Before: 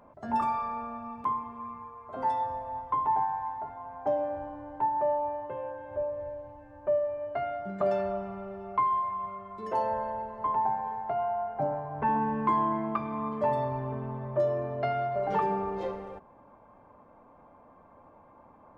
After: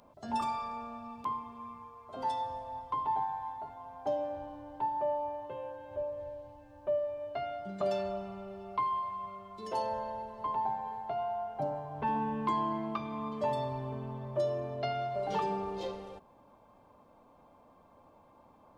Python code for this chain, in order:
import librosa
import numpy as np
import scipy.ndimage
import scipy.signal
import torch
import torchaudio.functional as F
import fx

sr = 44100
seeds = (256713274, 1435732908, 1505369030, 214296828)

y = fx.high_shelf_res(x, sr, hz=2600.0, db=11.0, q=1.5)
y = F.gain(torch.from_numpy(y), -4.0).numpy()